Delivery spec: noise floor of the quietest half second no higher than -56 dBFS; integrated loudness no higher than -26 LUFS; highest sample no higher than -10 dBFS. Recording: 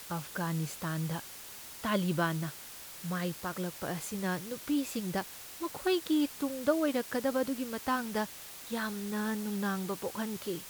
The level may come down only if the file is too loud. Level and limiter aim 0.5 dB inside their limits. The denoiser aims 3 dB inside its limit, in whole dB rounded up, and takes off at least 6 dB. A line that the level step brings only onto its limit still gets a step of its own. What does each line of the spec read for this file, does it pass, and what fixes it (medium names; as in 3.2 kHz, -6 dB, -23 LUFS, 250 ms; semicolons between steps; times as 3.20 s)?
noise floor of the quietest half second -47 dBFS: fail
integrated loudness -34.0 LUFS: pass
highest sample -14.5 dBFS: pass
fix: noise reduction 12 dB, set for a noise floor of -47 dBFS